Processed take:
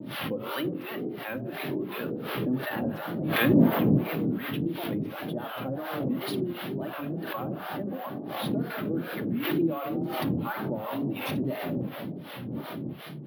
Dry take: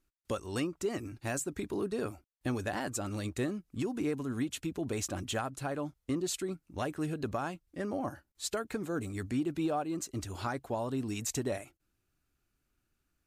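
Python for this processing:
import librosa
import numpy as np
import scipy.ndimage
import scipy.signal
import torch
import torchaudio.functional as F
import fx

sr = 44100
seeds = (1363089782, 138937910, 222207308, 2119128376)

p1 = fx.dmg_wind(x, sr, seeds[0], corner_hz=220.0, level_db=-33.0)
p2 = fx.quant_dither(p1, sr, seeds[1], bits=6, dither='triangular')
p3 = p1 + F.gain(torch.from_numpy(p2), -10.0).numpy()
p4 = scipy.signal.sosfilt(scipy.signal.ellip(3, 1.0, 40, [140.0, 3400.0], 'bandpass', fs=sr, output='sos'), p3)
p5 = fx.notch(p4, sr, hz=2500.0, q=28.0)
p6 = fx.room_shoebox(p5, sr, seeds[2], volume_m3=3600.0, walls='mixed', distance_m=2.4)
p7 = fx.wow_flutter(p6, sr, seeds[3], rate_hz=2.1, depth_cents=120.0)
p8 = np.repeat(p7[::3], 3)[:len(p7)]
p9 = fx.harmonic_tremolo(p8, sr, hz=2.8, depth_pct=100, crossover_hz=630.0)
y = fx.pre_swell(p9, sr, db_per_s=37.0)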